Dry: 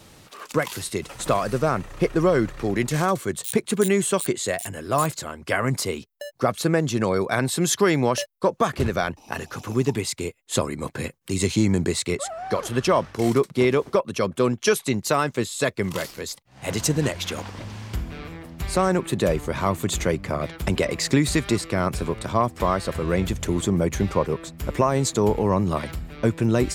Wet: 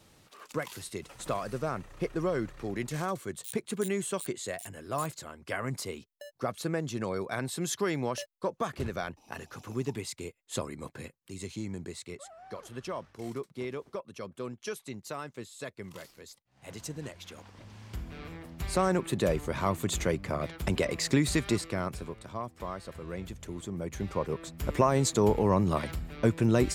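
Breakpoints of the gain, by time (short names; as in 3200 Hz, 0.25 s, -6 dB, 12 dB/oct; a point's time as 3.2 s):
10.8 s -11 dB
11.37 s -17.5 dB
17.41 s -17.5 dB
18.3 s -6 dB
21.57 s -6 dB
22.24 s -16 dB
23.69 s -16 dB
24.61 s -4 dB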